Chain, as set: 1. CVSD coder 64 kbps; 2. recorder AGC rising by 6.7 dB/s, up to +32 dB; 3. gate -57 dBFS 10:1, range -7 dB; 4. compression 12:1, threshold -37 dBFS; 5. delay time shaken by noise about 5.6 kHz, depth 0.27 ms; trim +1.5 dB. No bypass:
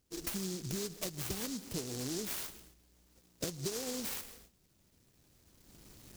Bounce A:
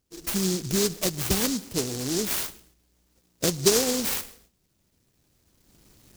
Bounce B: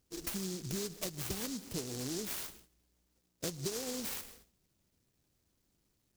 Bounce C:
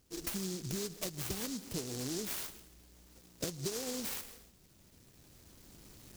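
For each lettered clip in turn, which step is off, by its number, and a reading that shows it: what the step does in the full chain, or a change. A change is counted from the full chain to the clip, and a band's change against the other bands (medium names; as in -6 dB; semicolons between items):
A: 4, mean gain reduction 10.5 dB; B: 2, momentary loudness spread change -9 LU; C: 3, momentary loudness spread change +6 LU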